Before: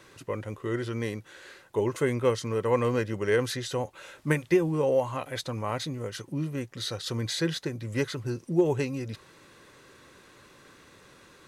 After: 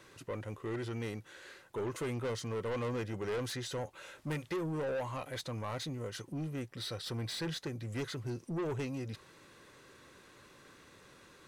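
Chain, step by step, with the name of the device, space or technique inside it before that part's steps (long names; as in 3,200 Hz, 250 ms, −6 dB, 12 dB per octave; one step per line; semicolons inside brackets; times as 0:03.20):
saturation between pre-emphasis and de-emphasis (high-shelf EQ 7,900 Hz +9 dB; soft clipping −28.5 dBFS, distortion −7 dB; high-shelf EQ 7,900 Hz −9 dB)
0:06.68–0:07.44: notch filter 6,600 Hz, Q 5.2
level −4 dB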